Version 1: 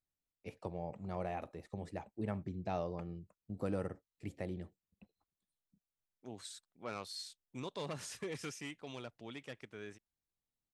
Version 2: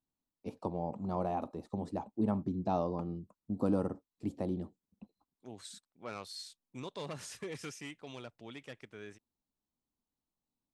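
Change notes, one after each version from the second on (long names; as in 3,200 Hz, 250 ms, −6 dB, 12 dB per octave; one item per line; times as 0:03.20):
first voice: add octave-band graphic EQ 250/1,000/2,000/4,000 Hz +12/+11/−12/+4 dB
second voice: entry −0.80 s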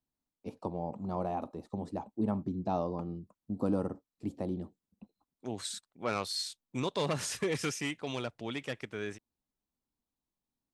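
second voice +10.0 dB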